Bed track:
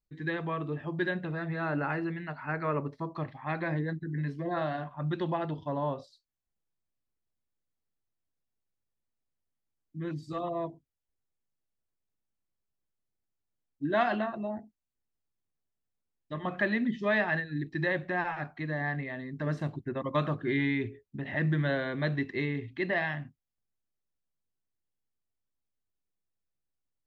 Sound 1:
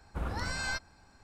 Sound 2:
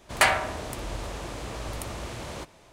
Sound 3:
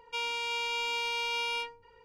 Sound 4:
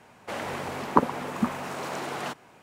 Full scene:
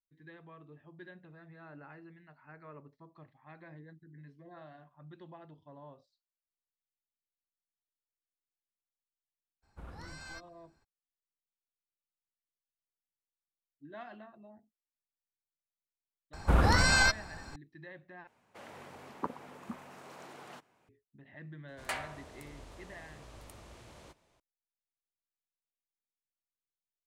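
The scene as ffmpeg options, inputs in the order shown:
-filter_complex "[1:a]asplit=2[a][b];[0:a]volume=-20dB[c];[a]asoftclip=type=hard:threshold=-26dB[d];[b]alimiter=level_in=26.5dB:limit=-1dB:release=50:level=0:latency=1[e];[c]asplit=2[f][g];[f]atrim=end=18.274[h];[4:a]atrim=end=2.62,asetpts=PTS-STARTPTS,volume=-17dB[i];[g]atrim=start=20.886[j];[d]atrim=end=1.23,asetpts=PTS-STARTPTS,volume=-13dB,afade=t=in:d=0.02,afade=t=out:st=1.21:d=0.02,adelay=424242S[k];[e]atrim=end=1.23,asetpts=PTS-STARTPTS,volume=-14dB,afade=t=in:d=0.004:c=hsin,afade=t=out:st=1.226:d=0.004:c=hsin,adelay=16330[l];[2:a]atrim=end=2.72,asetpts=PTS-STARTPTS,volume=-17dB,afade=t=in:d=0.004:c=hsin,afade=t=out:st=2.716:d=0.004:c=hsin,adelay=21680[m];[h][i]acrossfade=d=0.004:c1=hsin:c2=hsin[n];[n][j]acrossfade=d=0.004:c1=hsin:c2=hsin[o];[o][k][l][m]amix=inputs=4:normalize=0"

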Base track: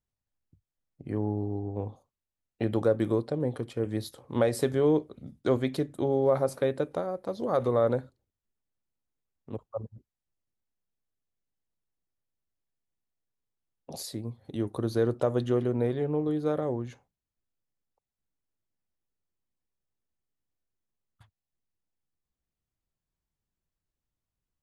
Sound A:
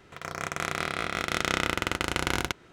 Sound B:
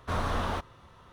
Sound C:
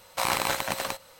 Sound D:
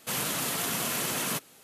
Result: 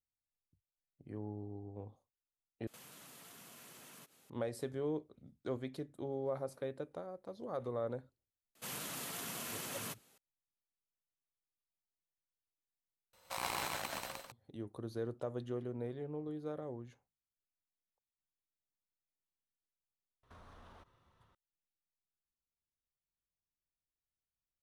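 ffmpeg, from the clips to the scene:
-filter_complex "[4:a]asplit=2[a][b];[0:a]volume=-14dB[c];[a]acompressor=threshold=-42dB:ratio=6:attack=3.2:release=140:knee=1:detection=peak[d];[3:a]aecho=1:1:119.5|265.3:0.891|0.398[e];[2:a]acompressor=threshold=-37dB:ratio=6:attack=3.2:release=140:knee=1:detection=peak[f];[c]asplit=3[g][h][i];[g]atrim=end=2.674[j];[d]atrim=end=1.63,asetpts=PTS-STARTPTS,volume=-12dB[k];[h]atrim=start=4.296:end=13.134[l];[e]atrim=end=1.19,asetpts=PTS-STARTPTS,volume=-14.5dB[m];[i]atrim=start=14.316[n];[b]atrim=end=1.63,asetpts=PTS-STARTPTS,volume=-13dB,afade=t=in:d=0.004:c=hsin,afade=t=out:st=1.626:d=0.004:c=hsin,adelay=8550[o];[f]atrim=end=1.12,asetpts=PTS-STARTPTS,volume=-17.5dB,afade=t=in:d=0.004:c=hsin,afade=t=out:st=1.116:d=0.004:c=hsin,adelay=20230[p];[j][k]acrossfade=d=0.004:c1=hsin:c2=hsin[q];[q][l]acrossfade=d=0.004:c1=hsin:c2=hsin[r];[r][m]acrossfade=d=0.004:c1=hsin:c2=hsin[s];[s][n]acrossfade=d=0.004:c1=hsin:c2=hsin[t];[t][o][p]amix=inputs=3:normalize=0"

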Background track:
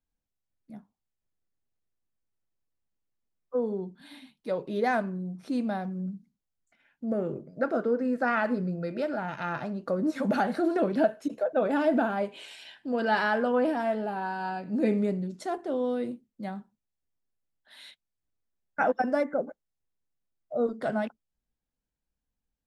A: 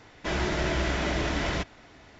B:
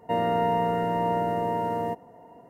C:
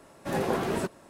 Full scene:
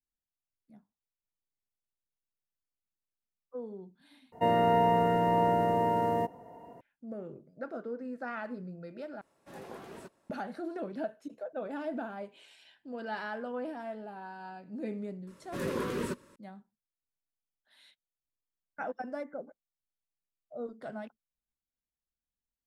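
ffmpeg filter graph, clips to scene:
-filter_complex "[3:a]asplit=2[a][b];[0:a]volume=-12dB[c];[a]lowshelf=f=200:g=-5[d];[b]asuperstop=centerf=740:order=8:qfactor=2.3[e];[c]asplit=3[f][g][h];[f]atrim=end=4.324[i];[2:a]atrim=end=2.49,asetpts=PTS-STARTPTS,volume=-0.5dB[j];[g]atrim=start=6.806:end=9.214[k];[d]atrim=end=1.09,asetpts=PTS-STARTPTS,volume=-17dB[l];[h]atrim=start=10.296[m];[e]atrim=end=1.09,asetpts=PTS-STARTPTS,volume=-5dB,afade=t=in:d=0.004:c=hsin,afade=t=out:st=1.086:d=0.004:c=hsin,adelay=15270[n];[i][j]acrossfade=d=0.004:c1=hsin:c2=hsin[o];[o][k]acrossfade=d=0.004:c1=hsin:c2=hsin[p];[p][l]acrossfade=d=0.004:c1=hsin:c2=hsin[q];[q][m]acrossfade=d=0.004:c1=hsin:c2=hsin[r];[r][n]amix=inputs=2:normalize=0"

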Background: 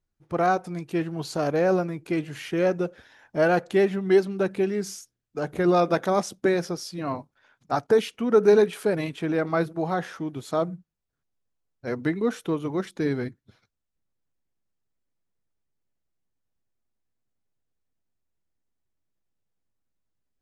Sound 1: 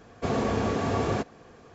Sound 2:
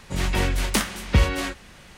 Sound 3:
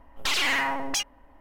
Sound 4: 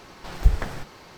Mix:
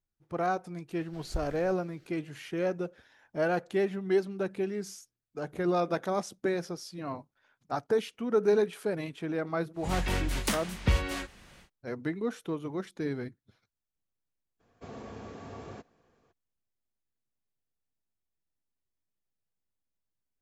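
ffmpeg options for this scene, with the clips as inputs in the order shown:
-filter_complex "[0:a]volume=-7.5dB[a];[4:a]asuperstop=centerf=950:order=4:qfactor=1.5,atrim=end=1.17,asetpts=PTS-STARTPTS,volume=-17.5dB,afade=t=in:d=0.004:c=hsin,afade=t=out:st=1.166:d=0.004:c=hsin,adelay=890[b];[2:a]atrim=end=1.97,asetpts=PTS-STARTPTS,volume=-7.5dB,afade=t=in:d=0.1,afade=t=out:st=1.87:d=0.1,adelay=9730[c];[1:a]atrim=end=1.74,asetpts=PTS-STARTPTS,volume=-17.5dB,afade=t=in:d=0.02,afade=t=out:st=1.72:d=0.02,adelay=14590[d];[a][b][c][d]amix=inputs=4:normalize=0"

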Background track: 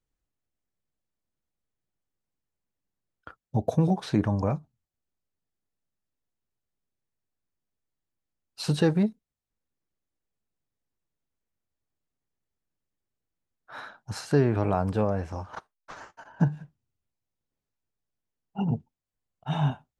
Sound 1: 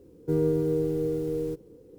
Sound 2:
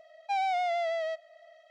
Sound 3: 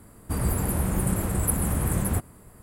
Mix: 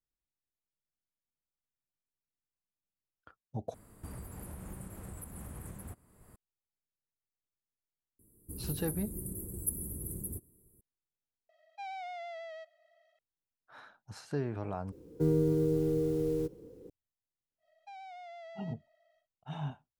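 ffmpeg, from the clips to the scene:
-filter_complex "[3:a]asplit=2[a][b];[2:a]asplit=2[c][d];[0:a]volume=-12.5dB[e];[a]acompressor=threshold=-29dB:ratio=16:attack=0.3:release=491:knee=1:detection=rms[f];[b]firequalizer=gain_entry='entry(230,0);entry(370,6);entry(630,-15);entry(1400,-23);entry(5300,-13);entry(11000,11)':delay=0.05:min_phase=1[g];[c]equalizer=f=2.1k:w=0.64:g=2.5[h];[1:a]acrossover=split=330|3000[i][j][k];[j]acompressor=threshold=-31dB:ratio=6:attack=3.2:release=140:knee=2.83:detection=peak[l];[i][l][k]amix=inputs=3:normalize=0[m];[d]acompressor=threshold=-31dB:ratio=6:attack=3.2:release=140:knee=1:detection=peak[n];[e]asplit=4[o][p][q][r];[o]atrim=end=3.744[s];[f]atrim=end=2.62,asetpts=PTS-STARTPTS,volume=-8dB[t];[p]atrim=start=6.356:end=11.494[u];[h]atrim=end=1.7,asetpts=PTS-STARTPTS,volume=-14dB[v];[q]atrim=start=13.186:end=14.924[w];[m]atrim=end=1.98,asetpts=PTS-STARTPTS,volume=-0.5dB[x];[r]atrim=start=16.896[y];[g]atrim=end=2.62,asetpts=PTS-STARTPTS,volume=-17.5dB,afade=t=in:d=0.004:c=hsin,afade=t=out:st=2.616:d=0.004:c=hsin,adelay=8190[z];[n]atrim=end=1.7,asetpts=PTS-STARTPTS,volume=-16dB,afade=t=in:d=0.1,afade=t=out:st=1.6:d=0.1,adelay=17580[aa];[s][t]acrossfade=d=0.004:c1=hsin:c2=hsin[ab];[ab][u]acrossfade=d=0.004:c1=hsin:c2=hsin[ac];[ac][v]acrossfade=d=0.004:c1=hsin:c2=hsin[ad];[ad][w]acrossfade=d=0.004:c1=hsin:c2=hsin[ae];[ae][x]acrossfade=d=0.004:c1=hsin:c2=hsin[af];[af][y]acrossfade=d=0.004:c1=hsin:c2=hsin[ag];[ag][z][aa]amix=inputs=3:normalize=0"

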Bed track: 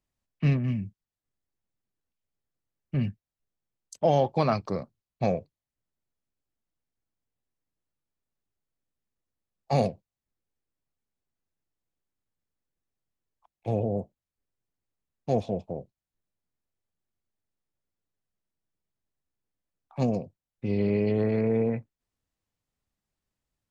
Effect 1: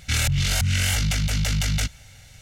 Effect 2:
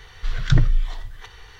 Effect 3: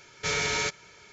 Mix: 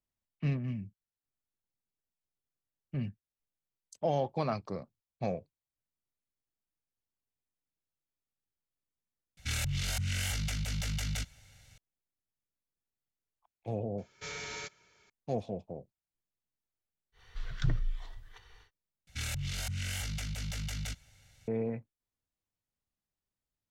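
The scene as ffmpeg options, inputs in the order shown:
-filter_complex "[1:a]asplit=2[a][b];[0:a]volume=-8dB,asplit=3[c][d][e];[c]atrim=end=9.374[f];[a]atrim=end=2.41,asetpts=PTS-STARTPTS,volume=-11.5dB[g];[d]atrim=start=11.776:end=19.074[h];[b]atrim=end=2.41,asetpts=PTS-STARTPTS,volume=-14.5dB[i];[e]atrim=start=21.476[j];[3:a]atrim=end=1.12,asetpts=PTS-STARTPTS,volume=-13.5dB,afade=t=in:d=0.004:c=hsin,afade=t=out:st=1.116:d=0.004:c=hsin,adelay=13980[k];[2:a]atrim=end=1.59,asetpts=PTS-STARTPTS,volume=-14dB,afade=t=in:d=0.1,afade=t=out:st=1.49:d=0.1,adelay=17120[l];[f][g]acrossfade=d=0.004:c1=hsin:c2=hsin[m];[m][h]acrossfade=d=0.004:c1=hsin:c2=hsin[n];[n][i]acrossfade=d=0.004:c1=hsin:c2=hsin[o];[o][j]acrossfade=d=0.004:c1=hsin:c2=hsin[p];[p][k][l]amix=inputs=3:normalize=0"

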